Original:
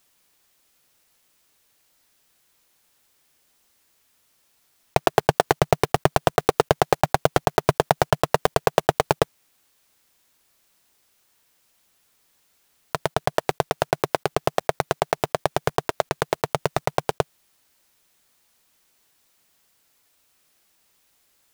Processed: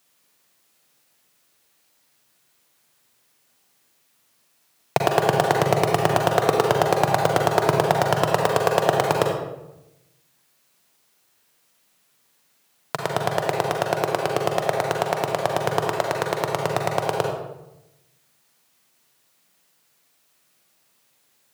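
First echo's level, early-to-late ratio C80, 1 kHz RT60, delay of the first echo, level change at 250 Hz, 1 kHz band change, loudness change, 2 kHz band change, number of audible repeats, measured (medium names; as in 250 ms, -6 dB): no echo, 5.5 dB, 0.85 s, no echo, +1.5 dB, +1.5 dB, +1.5 dB, +1.5 dB, no echo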